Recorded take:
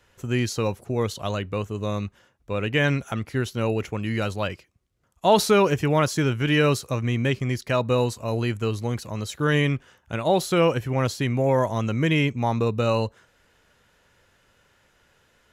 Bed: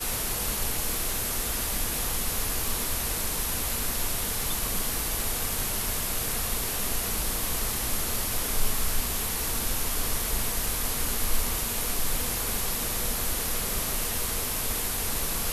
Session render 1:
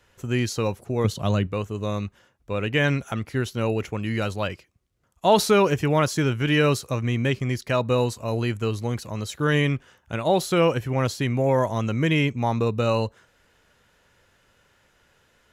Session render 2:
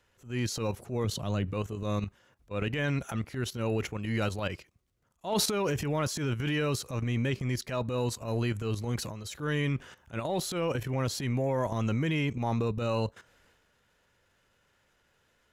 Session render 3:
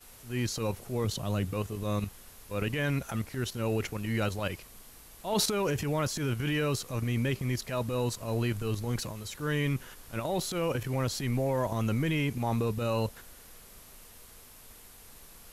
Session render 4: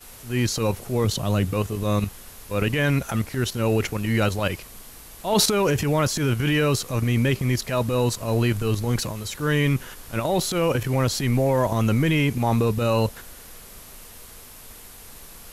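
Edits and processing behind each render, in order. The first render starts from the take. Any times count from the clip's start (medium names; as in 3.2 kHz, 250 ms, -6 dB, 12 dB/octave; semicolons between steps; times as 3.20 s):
1.04–1.47 s: peaking EQ 150 Hz +10 dB 2 oct
level held to a coarse grid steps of 14 dB; transient shaper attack -10 dB, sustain +6 dB
add bed -23 dB
trim +8.5 dB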